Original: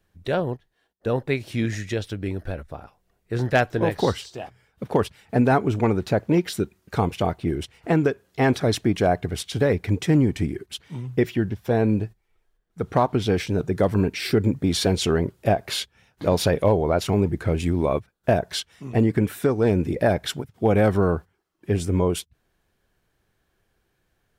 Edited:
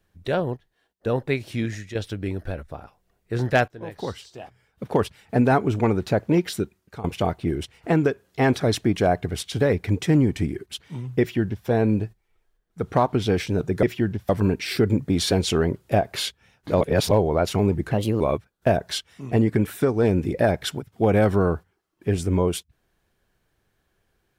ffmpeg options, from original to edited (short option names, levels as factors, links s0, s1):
-filter_complex "[0:a]asplit=10[s0][s1][s2][s3][s4][s5][s6][s7][s8][s9];[s0]atrim=end=1.95,asetpts=PTS-STARTPTS,afade=t=out:st=1.29:d=0.66:c=qsin:silence=0.334965[s10];[s1]atrim=start=1.95:end=3.68,asetpts=PTS-STARTPTS,afade=t=in:d=0.004:c=hsin:silence=0.334965,afade=t=out:st=1.726:d=0.004:c=hsin:silence=0.1[s11];[s2]atrim=start=3.68:end=7.04,asetpts=PTS-STARTPTS,afade=t=in:d=1.34:silence=0.1,afade=t=out:st=2.86:d=0.5:silence=0.125893[s12];[s3]atrim=start=7.04:end=13.832,asetpts=PTS-STARTPTS,afade=t=in:d=0.004:c=hsin:silence=0.125893[s13];[s4]atrim=start=11.198:end=11.662[s14];[s5]atrim=start=13.828:end=16.352[s15];[s6]atrim=start=16.348:end=16.652,asetpts=PTS-STARTPTS,areverse[s16];[s7]atrim=start=16.648:end=17.454[s17];[s8]atrim=start=17.45:end=17.82,asetpts=PTS-STARTPTS,asetrate=56007,aresample=44100,atrim=end_sample=12848,asetpts=PTS-STARTPTS[s18];[s9]atrim=start=17.816[s19];[s10][s11][s12][s13]concat=n=4:v=0:a=1[s20];[s20][s14]acrossfade=d=0.004:c1=hsin:c2=hsin[s21];[s21][s15]acrossfade=d=0.004:c1=hsin:c2=hsin[s22];[s22][s16]acrossfade=d=0.004:c1=hsin:c2=hsin[s23];[s23][s17]acrossfade=d=0.004:c1=hsin:c2=hsin[s24];[s24][s18]acrossfade=d=0.004:c1=hsin:c2=hsin[s25];[s25][s19]acrossfade=d=0.004:c1=hsin:c2=hsin"